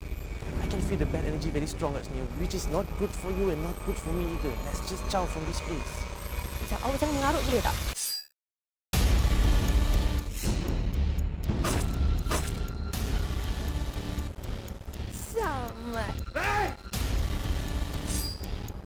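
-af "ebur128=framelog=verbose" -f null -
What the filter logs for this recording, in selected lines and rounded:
Integrated loudness:
  I:         -31.2 LUFS
  Threshold: -41.2 LUFS
Loudness range:
  LRA:         4.8 LU
  Threshold: -51.1 LUFS
  LRA low:   -33.5 LUFS
  LRA high:  -28.7 LUFS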